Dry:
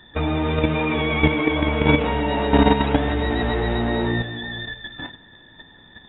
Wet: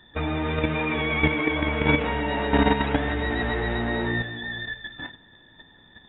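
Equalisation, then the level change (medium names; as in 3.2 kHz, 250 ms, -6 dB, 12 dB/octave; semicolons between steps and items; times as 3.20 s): dynamic bell 1.8 kHz, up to +6 dB, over -38 dBFS, Q 1.5; -5.0 dB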